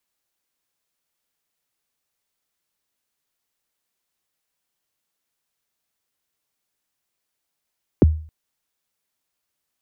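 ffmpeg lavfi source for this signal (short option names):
-f lavfi -i "aevalsrc='0.501*pow(10,-3*t/0.44)*sin(2*PI*(480*0.021/log(78/480)*(exp(log(78/480)*min(t,0.021)/0.021)-1)+78*max(t-0.021,0)))':d=0.27:s=44100"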